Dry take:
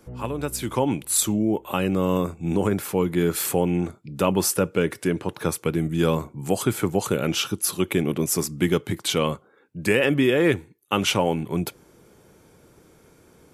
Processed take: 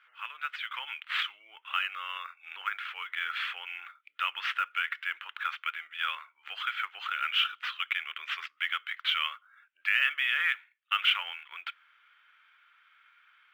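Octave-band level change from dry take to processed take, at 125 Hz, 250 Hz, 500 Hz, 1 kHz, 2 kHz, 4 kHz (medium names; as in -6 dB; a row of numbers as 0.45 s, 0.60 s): under -40 dB, under -40 dB, under -40 dB, -5.5 dB, +1.5 dB, -0.5 dB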